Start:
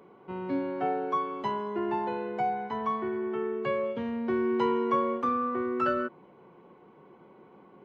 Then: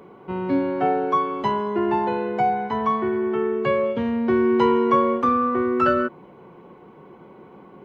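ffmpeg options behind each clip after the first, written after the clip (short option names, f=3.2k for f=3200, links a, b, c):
-af "lowshelf=f=110:g=7,volume=8dB"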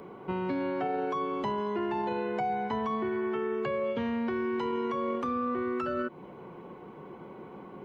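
-filter_complex "[0:a]alimiter=limit=-16.5dB:level=0:latency=1:release=11,acrossover=split=820|2200[a][b][c];[a]acompressor=threshold=-31dB:ratio=4[d];[b]acompressor=threshold=-40dB:ratio=4[e];[c]acompressor=threshold=-48dB:ratio=4[f];[d][e][f]amix=inputs=3:normalize=0"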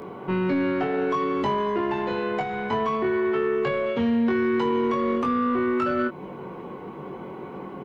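-filter_complex "[0:a]asoftclip=type=tanh:threshold=-25dB,asplit=2[a][b];[b]adelay=21,volume=-4dB[c];[a][c]amix=inputs=2:normalize=0,volume=7.5dB"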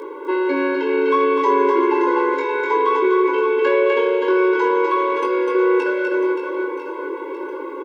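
-af "aecho=1:1:250|575|997.5|1547|2261:0.631|0.398|0.251|0.158|0.1,afftfilt=real='re*eq(mod(floor(b*sr/1024/280),2),1)':imag='im*eq(mod(floor(b*sr/1024/280),2),1)':win_size=1024:overlap=0.75,volume=7.5dB"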